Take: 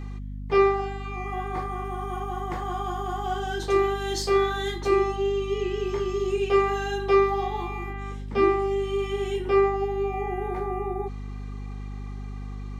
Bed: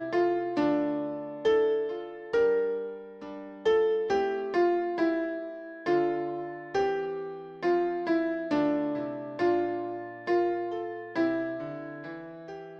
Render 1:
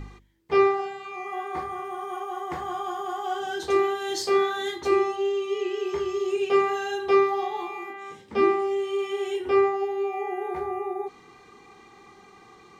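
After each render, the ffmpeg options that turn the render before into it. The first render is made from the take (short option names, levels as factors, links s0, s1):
-af "bandreject=f=50:t=h:w=4,bandreject=f=100:t=h:w=4,bandreject=f=150:t=h:w=4,bandreject=f=200:t=h:w=4,bandreject=f=250:t=h:w=4"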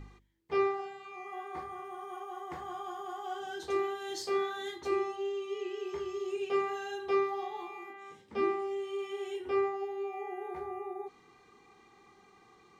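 -af "volume=0.335"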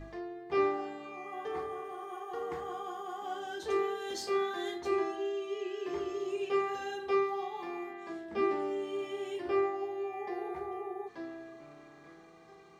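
-filter_complex "[1:a]volume=0.158[s0];[0:a][s0]amix=inputs=2:normalize=0"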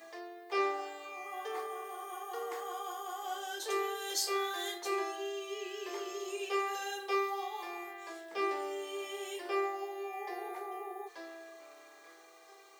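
-af "highpass=f=420:w=0.5412,highpass=f=420:w=1.3066,aemphasis=mode=production:type=75fm"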